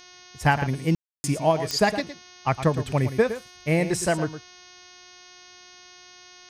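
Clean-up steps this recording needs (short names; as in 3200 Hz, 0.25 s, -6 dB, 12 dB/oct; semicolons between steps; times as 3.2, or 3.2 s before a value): de-click; de-hum 361 Hz, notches 18; room tone fill 0.95–1.24; inverse comb 0.112 s -11.5 dB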